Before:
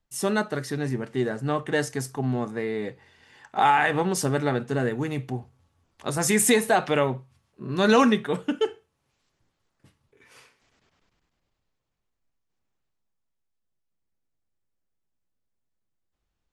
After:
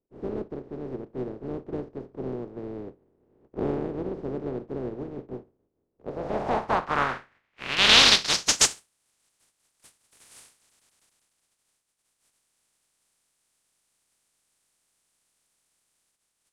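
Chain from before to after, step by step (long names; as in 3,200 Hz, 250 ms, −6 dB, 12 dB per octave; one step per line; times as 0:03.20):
compressing power law on the bin magnitudes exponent 0.12
dynamic equaliser 5,100 Hz, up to +4 dB, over −36 dBFS, Q 1.2
low-pass filter sweep 390 Hz → 9,300 Hz, 0:05.89–0:08.87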